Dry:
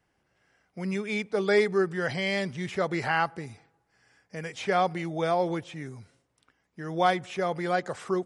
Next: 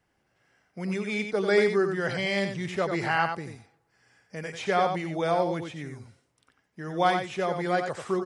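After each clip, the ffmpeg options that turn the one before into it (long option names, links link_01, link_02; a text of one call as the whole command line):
ffmpeg -i in.wav -af "aecho=1:1:91:0.473" out.wav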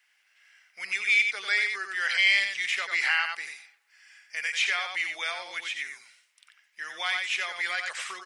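ffmpeg -i in.wav -af "acompressor=threshold=-27dB:ratio=3,highpass=frequency=2200:width_type=q:width=1.9,volume=8dB" out.wav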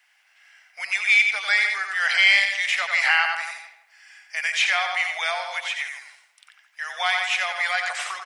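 ffmpeg -i in.wav -filter_complex "[0:a]lowshelf=frequency=470:width_type=q:width=3:gain=-14,asplit=2[link_01][link_02];[link_02]adelay=162,lowpass=frequency=1100:poles=1,volume=-6dB,asplit=2[link_03][link_04];[link_04]adelay=162,lowpass=frequency=1100:poles=1,volume=0.32,asplit=2[link_05][link_06];[link_06]adelay=162,lowpass=frequency=1100:poles=1,volume=0.32,asplit=2[link_07][link_08];[link_08]adelay=162,lowpass=frequency=1100:poles=1,volume=0.32[link_09];[link_01][link_03][link_05][link_07][link_09]amix=inputs=5:normalize=0,volume=4.5dB" out.wav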